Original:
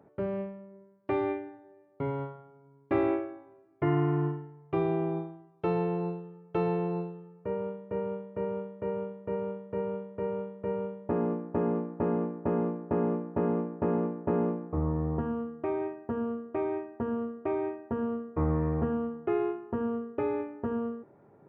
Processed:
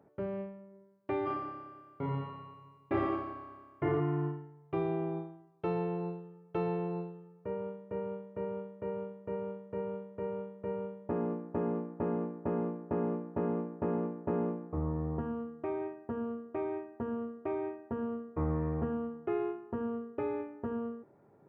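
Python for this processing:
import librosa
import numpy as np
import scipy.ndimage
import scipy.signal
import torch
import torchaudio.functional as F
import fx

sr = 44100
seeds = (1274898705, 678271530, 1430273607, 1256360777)

y = fx.room_flutter(x, sr, wall_m=5.1, rt60_s=1.5, at=(1.25, 3.99), fade=0.02)
y = F.gain(torch.from_numpy(y), -4.5).numpy()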